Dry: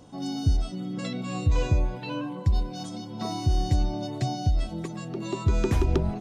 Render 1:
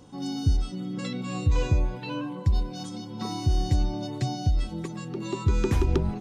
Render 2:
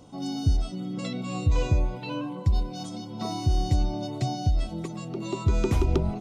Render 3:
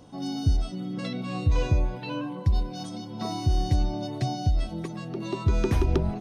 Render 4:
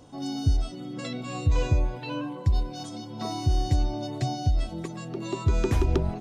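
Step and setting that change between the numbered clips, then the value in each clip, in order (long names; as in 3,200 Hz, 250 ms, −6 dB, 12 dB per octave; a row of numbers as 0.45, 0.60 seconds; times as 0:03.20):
notch filter, centre frequency: 660, 1,700, 7,300, 190 Hertz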